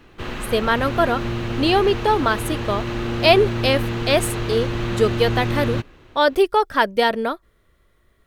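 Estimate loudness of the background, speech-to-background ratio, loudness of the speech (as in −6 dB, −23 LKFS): −26.0 LKFS, 5.5 dB, −20.5 LKFS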